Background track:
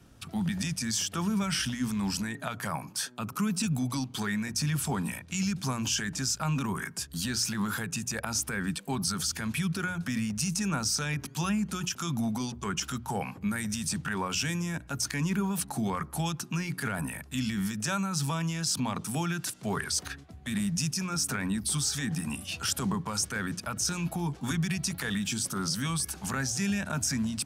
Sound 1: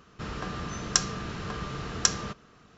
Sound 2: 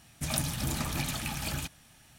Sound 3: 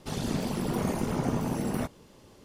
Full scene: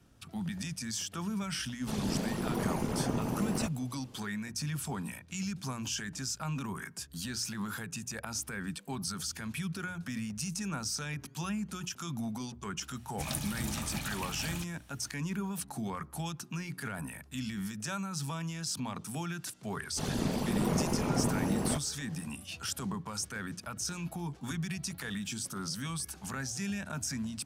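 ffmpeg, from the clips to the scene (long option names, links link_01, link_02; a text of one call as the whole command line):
ffmpeg -i bed.wav -i cue0.wav -i cue1.wav -i cue2.wav -filter_complex "[3:a]asplit=2[link_01][link_02];[0:a]volume=-6.5dB[link_03];[link_01]atrim=end=2.44,asetpts=PTS-STARTPTS,volume=-3.5dB,afade=type=in:duration=0.004:curve=hsin,afade=type=out:start_time=2.436:duration=0.004:curve=hsin,adelay=1810[link_04];[2:a]atrim=end=2.18,asetpts=PTS-STARTPTS,volume=-5dB,afade=type=in:duration=0.004:curve=hsin,afade=type=out:start_time=2.176:duration=0.004:curve=hsin,adelay=12970[link_05];[link_02]atrim=end=2.44,asetpts=PTS-STARTPTS,volume=-1.5dB,afade=type=in:duration=0.1,afade=type=out:start_time=2.34:duration=0.1,adelay=19910[link_06];[link_03][link_04][link_05][link_06]amix=inputs=4:normalize=0" out.wav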